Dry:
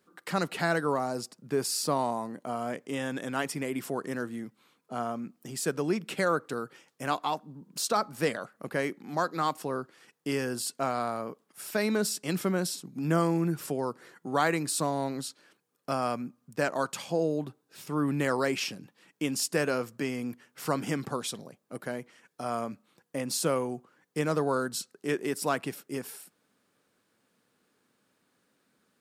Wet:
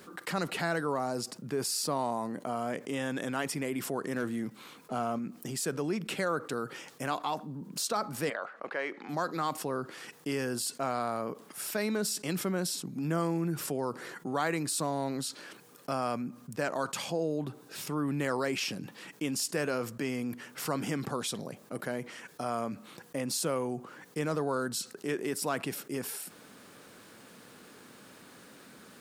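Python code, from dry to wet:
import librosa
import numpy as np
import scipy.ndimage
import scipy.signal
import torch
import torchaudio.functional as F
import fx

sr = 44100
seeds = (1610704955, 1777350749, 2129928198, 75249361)

y = fx.leveller(x, sr, passes=1, at=(4.16, 5.19))
y = fx.bandpass_edges(y, sr, low_hz=550.0, high_hz=fx.line((8.29, 2500.0), (9.08, 3700.0)), at=(8.29, 9.08), fade=0.02)
y = fx.env_flatten(y, sr, amount_pct=50)
y = y * 10.0 ** (-5.5 / 20.0)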